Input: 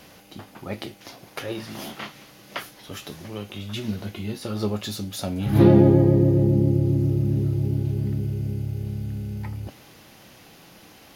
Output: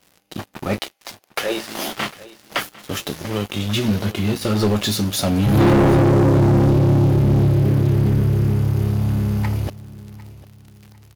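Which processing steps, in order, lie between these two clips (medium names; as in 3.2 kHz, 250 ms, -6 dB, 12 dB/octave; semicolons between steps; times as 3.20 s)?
0.78–1.96 s: high-pass 790 Hz -> 250 Hz 12 dB/octave; waveshaping leveller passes 5; on a send: feedback delay 751 ms, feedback 36%, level -19 dB; on the sum: trim -7 dB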